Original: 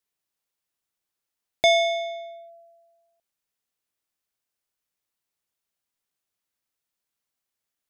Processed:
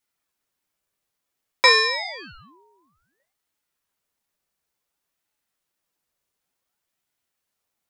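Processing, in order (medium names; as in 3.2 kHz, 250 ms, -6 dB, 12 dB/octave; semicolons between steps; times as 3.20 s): FDN reverb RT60 0.34 s, low-frequency decay 1.55×, high-frequency decay 0.45×, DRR -1 dB; ring modulator with a swept carrier 1 kHz, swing 75%, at 0.56 Hz; trim +5 dB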